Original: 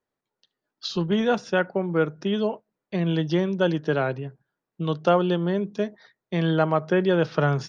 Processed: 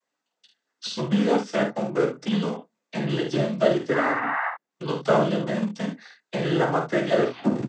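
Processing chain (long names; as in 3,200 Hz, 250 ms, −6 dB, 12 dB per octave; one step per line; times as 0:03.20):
turntable brake at the end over 0.49 s
in parallel at −7 dB: comparator with hysteresis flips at −20.5 dBFS
on the sum: sound drawn into the spectrogram noise, 0:03.93–0:04.49, 640–1,900 Hz −25 dBFS
comb filter 3.8 ms, depth 78%
cochlear-implant simulation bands 16
ambience of single reflections 14 ms −6 dB, 49 ms −6 dB, 73 ms −10.5 dB
one half of a high-frequency compander encoder only
level −4.5 dB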